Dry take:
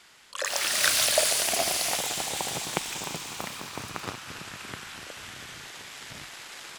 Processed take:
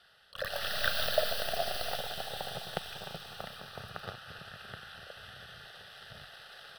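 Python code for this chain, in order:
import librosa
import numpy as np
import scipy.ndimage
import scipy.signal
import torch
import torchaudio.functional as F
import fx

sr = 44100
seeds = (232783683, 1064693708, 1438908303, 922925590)

y = fx.tracing_dist(x, sr, depth_ms=0.18)
y = fx.high_shelf(y, sr, hz=4200.0, db=-7.5)
y = fx.fixed_phaser(y, sr, hz=1500.0, stages=8)
y = y * librosa.db_to_amplitude(-2.5)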